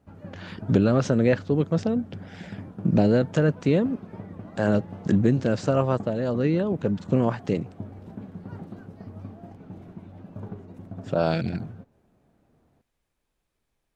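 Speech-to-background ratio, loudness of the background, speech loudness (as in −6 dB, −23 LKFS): 17.0 dB, −41.0 LKFS, −24.0 LKFS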